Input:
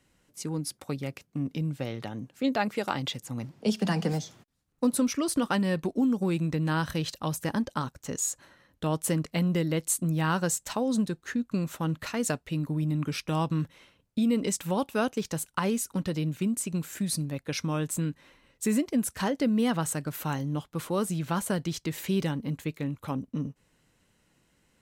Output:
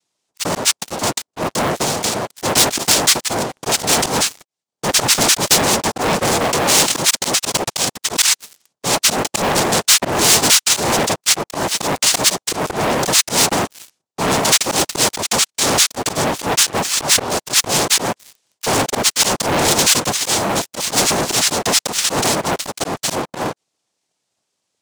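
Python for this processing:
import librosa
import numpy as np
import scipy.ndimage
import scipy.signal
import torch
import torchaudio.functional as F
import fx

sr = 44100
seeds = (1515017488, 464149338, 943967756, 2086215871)

y = fx.hpss(x, sr, part='percussive', gain_db=3)
y = fx.noise_vocoder(y, sr, seeds[0], bands=2)
y = fx.auto_swell(y, sr, attack_ms=119.0)
y = fx.leveller(y, sr, passes=5)
y = fx.high_shelf(y, sr, hz=2300.0, db=11.5)
y = y * 10.0 ** (-3.5 / 20.0)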